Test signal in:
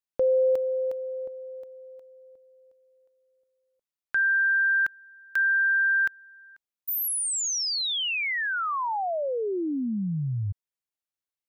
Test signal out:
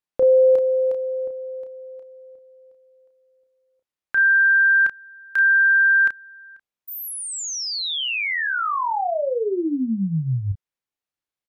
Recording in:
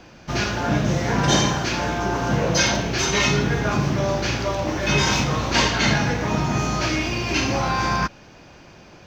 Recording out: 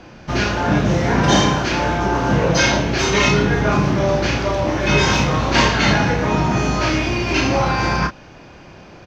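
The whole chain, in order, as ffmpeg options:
-filter_complex "[0:a]aemphasis=mode=reproduction:type=cd,asplit=2[a][b];[b]adelay=31,volume=-6dB[c];[a][c]amix=inputs=2:normalize=0,volume=4dB"

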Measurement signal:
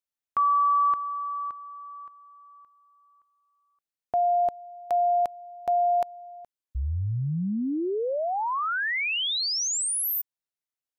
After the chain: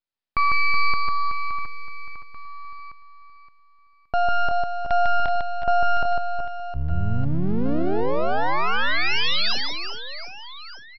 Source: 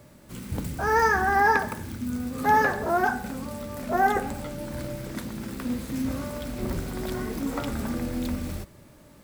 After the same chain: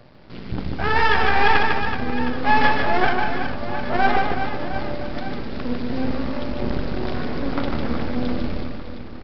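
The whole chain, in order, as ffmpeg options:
-af "aresample=11025,aeval=exprs='max(val(0),0)':c=same,aresample=44100,aecho=1:1:150|375|712.5|1219|1978:0.631|0.398|0.251|0.158|0.1,volume=7dB"

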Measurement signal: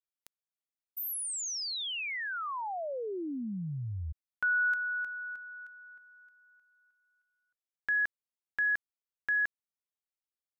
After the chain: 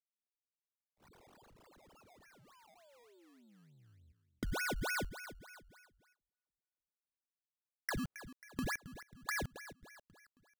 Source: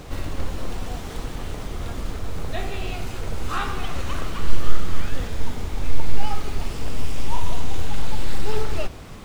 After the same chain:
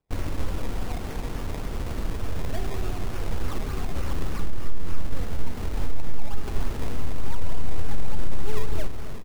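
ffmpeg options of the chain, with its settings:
-filter_complex "[0:a]agate=range=-42dB:threshold=-33dB:ratio=16:release=316:detection=rms,acrossover=split=470[a][b];[b]acompressor=threshold=-37dB:ratio=6:attack=9.7:release=360:detection=peak[c];[a][c]amix=inputs=2:normalize=0,alimiter=limit=-11.5dB:level=0:latency=1:release=333,aecho=1:1:270|540|810|1080:0.211|0.0951|0.0428|0.0193,acrusher=samples=21:mix=1:aa=0.000001:lfo=1:lforange=21:lforate=3.4"

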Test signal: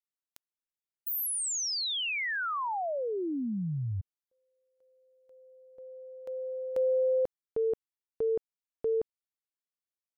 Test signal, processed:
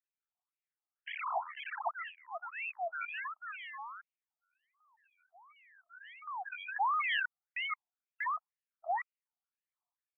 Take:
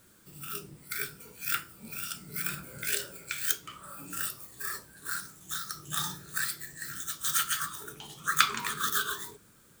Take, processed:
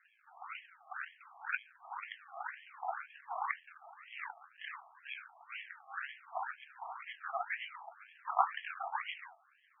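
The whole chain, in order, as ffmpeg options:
-af "acrusher=samples=36:mix=1:aa=0.000001:lfo=1:lforange=21.6:lforate=1.4,aresample=22050,aresample=44100,afftfilt=real='re*between(b*sr/1024,910*pow(2400/910,0.5+0.5*sin(2*PI*2*pts/sr))/1.41,910*pow(2400/910,0.5+0.5*sin(2*PI*2*pts/sr))*1.41)':imag='im*between(b*sr/1024,910*pow(2400/910,0.5+0.5*sin(2*PI*2*pts/sr))/1.41,910*pow(2400/910,0.5+0.5*sin(2*PI*2*pts/sr))*1.41)':win_size=1024:overlap=0.75,volume=4dB"

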